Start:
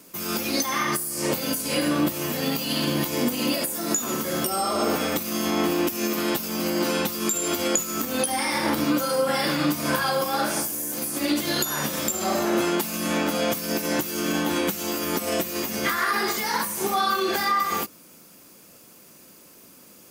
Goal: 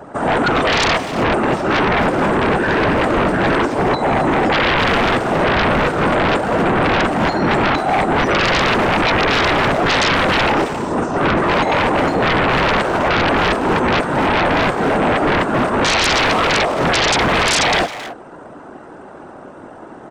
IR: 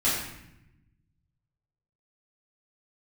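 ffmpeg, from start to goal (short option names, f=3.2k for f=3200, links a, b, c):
-filter_complex "[0:a]acrossover=split=480 2700:gain=0.0708 1 0.178[a][b][c];[a][b][c]amix=inputs=3:normalize=0,asetrate=25476,aresample=44100,atempo=1.73107,afftfilt=real='hypot(re,im)*cos(2*PI*random(0))':imag='hypot(re,im)*sin(2*PI*random(1))':win_size=512:overlap=0.75,acrossover=split=1800[d][e];[d]aeval=exprs='0.112*sin(PI/2*10*val(0)/0.112)':c=same[f];[f][e]amix=inputs=2:normalize=0,asplit=2[g][h];[h]adelay=270,highpass=300,lowpass=3.4k,asoftclip=type=hard:threshold=-26dB,volume=-8dB[i];[g][i]amix=inputs=2:normalize=0,volume=7dB"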